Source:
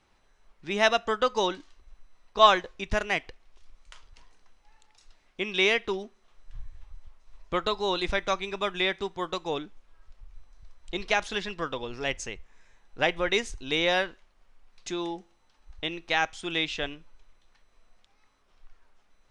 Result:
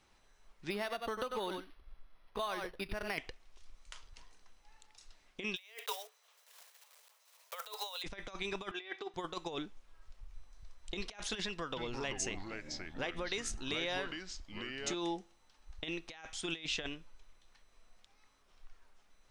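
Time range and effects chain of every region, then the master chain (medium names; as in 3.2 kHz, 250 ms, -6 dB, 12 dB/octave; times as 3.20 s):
0.70–3.18 s: delay 94 ms -13 dB + compression 12:1, threshold -30 dBFS + decimation joined by straight lines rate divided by 6×
5.56–8.04 s: block-companded coder 5-bit + Chebyshev high-pass 430 Hz, order 10 + tilt EQ +1.5 dB/octave
8.71–9.14 s: high-pass 380 Hz + distance through air 140 m + comb 2.6 ms, depth 68%
11.45–14.94 s: compression, threshold -32 dBFS + ever faster or slower copies 316 ms, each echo -4 st, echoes 3, each echo -6 dB
whole clip: treble shelf 4.1 kHz +6.5 dB; compressor with a negative ratio -32 dBFS, ratio -0.5; trim -6 dB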